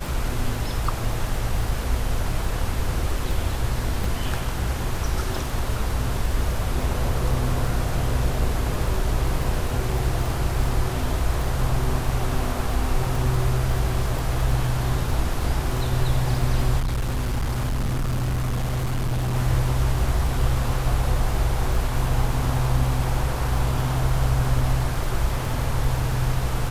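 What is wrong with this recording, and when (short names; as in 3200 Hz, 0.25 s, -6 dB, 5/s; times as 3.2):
crackle 20/s -26 dBFS
4.04 gap 2.9 ms
16.79–19.35 clipped -20.5 dBFS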